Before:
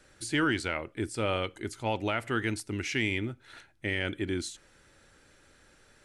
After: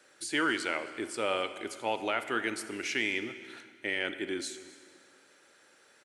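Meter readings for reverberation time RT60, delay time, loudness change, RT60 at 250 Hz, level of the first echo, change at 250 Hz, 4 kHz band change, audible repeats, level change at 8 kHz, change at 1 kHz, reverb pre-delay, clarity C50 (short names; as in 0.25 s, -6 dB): 1.9 s, 0.267 s, -1.0 dB, 1.8 s, -21.0 dB, -4.0 dB, +0.5 dB, 1, +0.5 dB, +0.5 dB, 25 ms, 11.5 dB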